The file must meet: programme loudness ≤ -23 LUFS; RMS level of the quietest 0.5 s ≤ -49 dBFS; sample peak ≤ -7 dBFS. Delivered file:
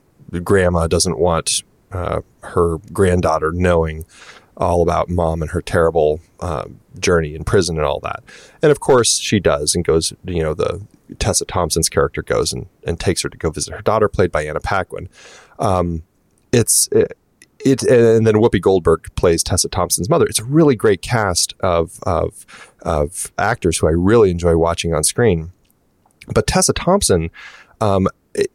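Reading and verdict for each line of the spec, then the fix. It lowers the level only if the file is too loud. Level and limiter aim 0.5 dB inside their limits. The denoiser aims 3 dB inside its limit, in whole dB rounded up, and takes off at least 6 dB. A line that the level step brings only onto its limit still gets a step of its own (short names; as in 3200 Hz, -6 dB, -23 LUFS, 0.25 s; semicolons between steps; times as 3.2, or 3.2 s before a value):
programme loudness -16.5 LUFS: fail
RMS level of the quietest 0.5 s -58 dBFS: OK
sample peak -3.5 dBFS: fail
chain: gain -7 dB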